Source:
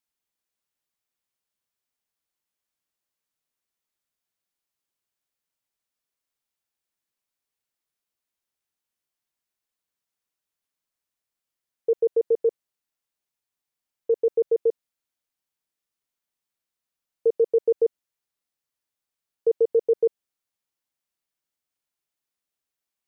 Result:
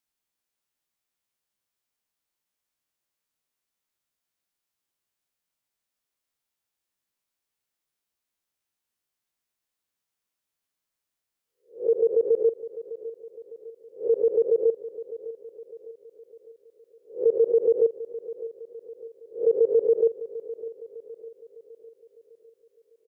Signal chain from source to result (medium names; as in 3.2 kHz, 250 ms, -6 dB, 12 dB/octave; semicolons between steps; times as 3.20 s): reverse spectral sustain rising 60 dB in 0.31 s; on a send: feedback delay 605 ms, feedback 49%, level -15 dB